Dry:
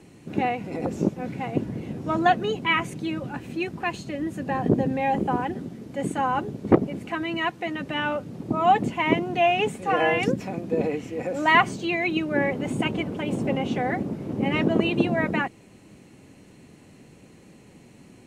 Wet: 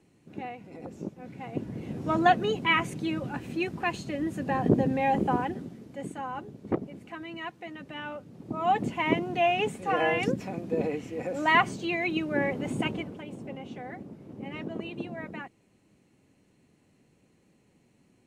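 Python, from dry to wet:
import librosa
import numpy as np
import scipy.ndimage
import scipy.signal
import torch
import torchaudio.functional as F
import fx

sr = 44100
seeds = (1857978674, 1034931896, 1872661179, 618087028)

y = fx.gain(x, sr, db=fx.line((1.14, -13.5), (2.02, -1.5), (5.34, -1.5), (6.21, -11.5), (8.31, -11.5), (8.88, -4.0), (12.87, -4.0), (13.32, -14.5)))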